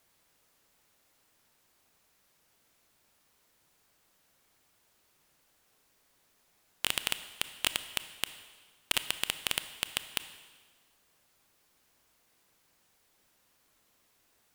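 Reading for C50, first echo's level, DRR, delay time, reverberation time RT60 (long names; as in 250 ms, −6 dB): 12.0 dB, no echo audible, 11.0 dB, no echo audible, 1.3 s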